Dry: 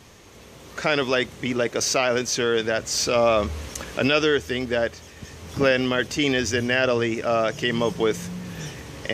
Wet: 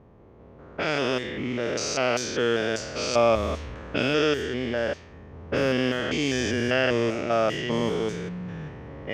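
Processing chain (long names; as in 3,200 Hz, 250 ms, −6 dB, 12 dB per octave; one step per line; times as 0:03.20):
spectrum averaged block by block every 200 ms
low-pass that shuts in the quiet parts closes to 720 Hz, open at −20 dBFS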